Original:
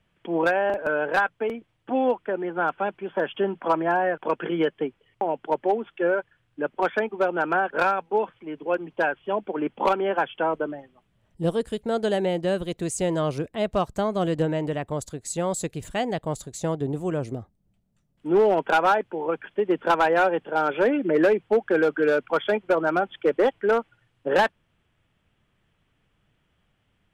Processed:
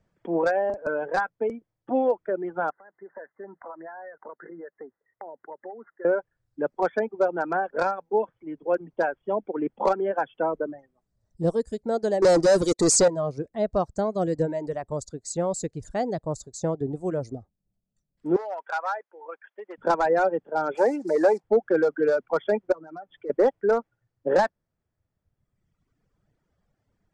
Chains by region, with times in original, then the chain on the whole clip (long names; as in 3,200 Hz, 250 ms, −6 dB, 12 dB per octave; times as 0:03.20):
0:02.70–0:06.05: spectral tilt +4.5 dB per octave + downward compressor 4 to 1, threshold −37 dBFS + linear-phase brick-wall low-pass 2,100 Hz
0:12.22–0:13.08: running median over 3 samples + bass and treble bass −11 dB, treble +8 dB + leveller curve on the samples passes 5
0:18.36–0:19.78: high-pass filter 1,100 Hz + high-shelf EQ 4,500 Hz −11 dB
0:20.75–0:21.44: one scale factor per block 5 bits + high-pass filter 380 Hz 6 dB per octave + parametric band 830 Hz +12.5 dB 0.41 octaves
0:22.72–0:23.30: comb filter 6.8 ms, depth 48% + downward compressor 3 to 1, threshold −38 dBFS
whole clip: low-pass filter 7,700 Hz 24 dB per octave; reverb reduction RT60 1.5 s; drawn EQ curve 350 Hz 0 dB, 570 Hz +2 dB, 1,100 Hz −4 dB, 1,900 Hz −6 dB, 3,000 Hz −17 dB, 4,600 Hz +1 dB